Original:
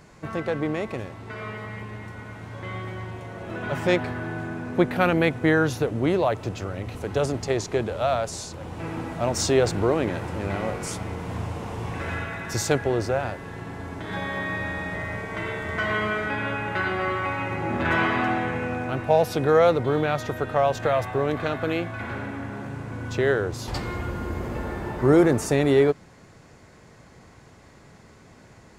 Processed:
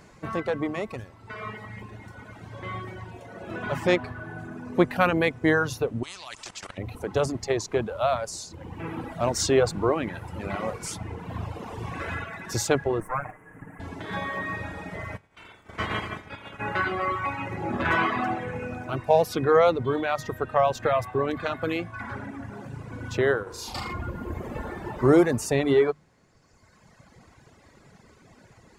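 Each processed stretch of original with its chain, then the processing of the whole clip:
6.03–6.78 s: low-pass 9.5 kHz 24 dB/octave + level held to a coarse grid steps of 15 dB + spectrum-flattening compressor 4:1
13.00–13.80 s: comb filter that takes the minimum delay 6.5 ms + Chebyshev band-stop 1.9–8.5 kHz
15.16–16.59 s: spectral peaks clipped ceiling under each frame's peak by 15 dB + expander -22 dBFS + peaking EQ 83 Hz +7 dB 1.9 oct
23.43–23.93 s: bass shelf 360 Hz -5.5 dB + flutter echo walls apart 6.5 m, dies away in 0.91 s + transformer saturation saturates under 250 Hz
whole clip: hum notches 50/100/150 Hz; reverb removal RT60 1.8 s; dynamic bell 1.1 kHz, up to +5 dB, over -47 dBFS, Q 5.2

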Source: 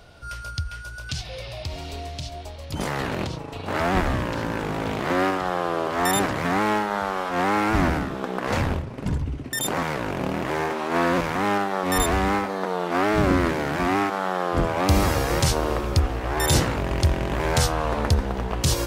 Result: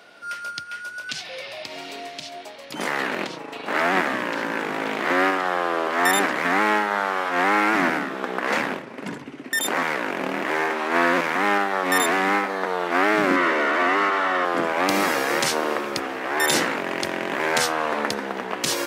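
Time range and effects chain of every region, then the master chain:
13.36–14.45 s: peaking EQ 100 Hz -14 dB 2.4 oct + overdrive pedal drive 24 dB, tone 1 kHz, clips at -11.5 dBFS + comb of notches 820 Hz
whole clip: high-pass 220 Hz 24 dB/octave; peaking EQ 1.9 kHz +7.5 dB 1.2 oct

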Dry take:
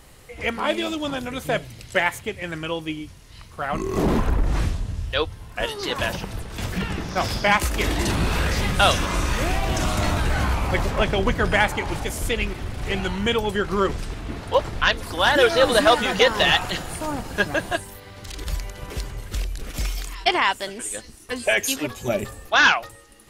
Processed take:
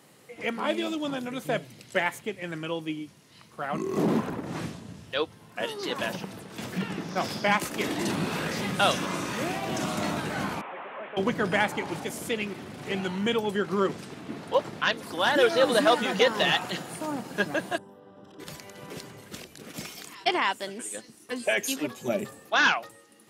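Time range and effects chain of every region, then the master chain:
10.61–11.17 s: one-bit delta coder 16 kbps, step -36.5 dBFS + high-pass 770 Hz
17.78–18.40 s: boxcar filter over 20 samples + bass shelf 83 Hz -11 dB
whole clip: high-pass 160 Hz 24 dB/octave; bass shelf 410 Hz +6 dB; trim -6.5 dB

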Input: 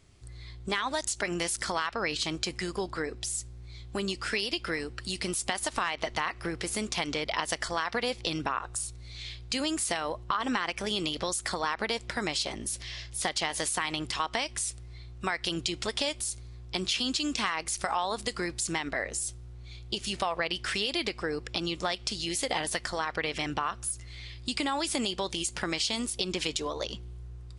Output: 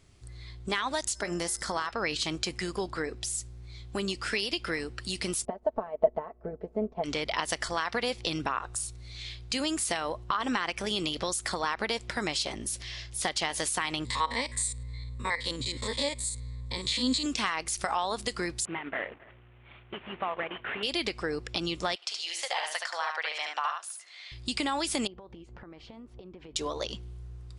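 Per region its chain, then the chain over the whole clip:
1.14–1.90 s: peaking EQ 2.6 kHz -8 dB 0.88 oct + de-hum 119.5 Hz, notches 18 + whistle 5.2 kHz -53 dBFS
5.45–7.04 s: resonant low-pass 600 Hz, resonance Q 3.1 + comb 4.6 ms, depth 66% + upward expansion, over -45 dBFS
14.05–17.26 s: spectrogram pixelated in time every 50 ms + rippled EQ curve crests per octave 1, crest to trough 14 dB
18.65–20.83 s: CVSD coder 16 kbps + high-pass 300 Hz 6 dB/octave + delay 266 ms -23.5 dB
21.95–24.32 s: high-pass 660 Hz 24 dB/octave + distance through air 55 m + delay 72 ms -4.5 dB
25.07–26.56 s: low-pass 1.1 kHz + compression 16:1, threshold -43 dBFS
whole clip: none

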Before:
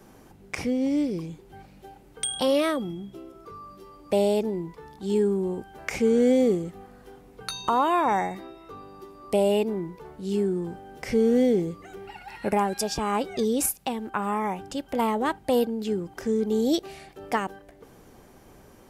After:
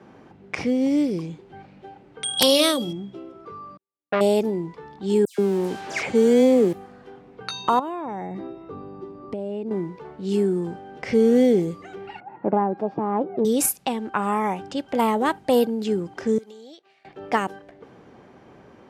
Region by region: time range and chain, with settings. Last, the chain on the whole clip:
2.37–2.93 s: resonant high shelf 2.7 kHz +10.5 dB, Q 1.5 + de-hum 95.29 Hz, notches 8 + integer overflow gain 7 dB
3.77–4.21 s: gate -35 dBFS, range -52 dB + careless resampling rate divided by 8×, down none, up filtered + transformer saturation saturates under 1.1 kHz
5.25–6.73 s: jump at every zero crossing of -36 dBFS + bass shelf 84 Hz -8.5 dB + phase dispersion lows, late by 134 ms, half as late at 2.7 kHz
7.79–9.71 s: tilt shelf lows +7.5 dB, about 690 Hz + compression, threshold -31 dBFS
12.20–13.45 s: self-modulated delay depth 0.15 ms + Chebyshev band-pass 140–810 Hz + peaking EQ 320 Hz +8 dB 0.25 oct
16.38–17.05 s: high-pass 1.5 kHz 6 dB/octave + expander -39 dBFS + compression 16:1, threshold -43 dBFS
whole clip: high-pass 110 Hz 12 dB/octave; level-controlled noise filter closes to 2.8 kHz, open at -22 dBFS; trim +4 dB

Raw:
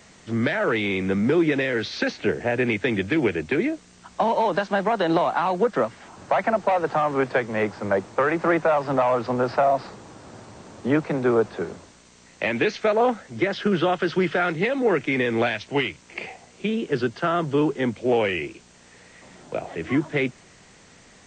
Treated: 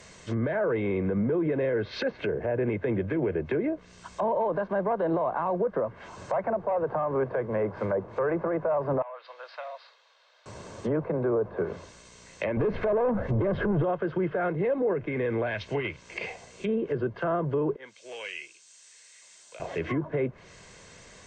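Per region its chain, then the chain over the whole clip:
9.02–10.46 s: Chebyshev band-pass 520–3900 Hz, order 3 + differentiator
12.57–13.84 s: tilt EQ -3 dB/octave + compression 4:1, threshold -25 dBFS + waveshaping leveller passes 3
14.93–15.85 s: bass shelf 180 Hz +4 dB + compression 2.5:1, threshold -25 dBFS
17.76–19.60 s: differentiator + tape noise reduction on one side only encoder only
whole clip: low-pass that closes with the level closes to 990 Hz, closed at -21.5 dBFS; comb 1.9 ms, depth 43%; peak limiter -19.5 dBFS

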